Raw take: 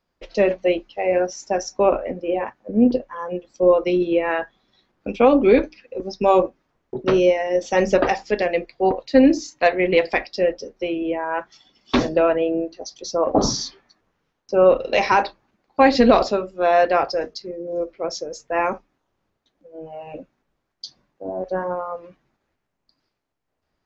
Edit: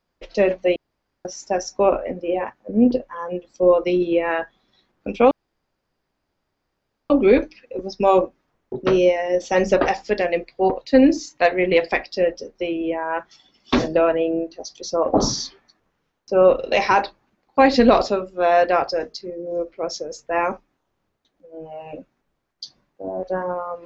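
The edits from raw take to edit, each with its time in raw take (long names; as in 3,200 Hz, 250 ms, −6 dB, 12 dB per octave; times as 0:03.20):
0:00.76–0:01.25: fill with room tone
0:05.31: splice in room tone 1.79 s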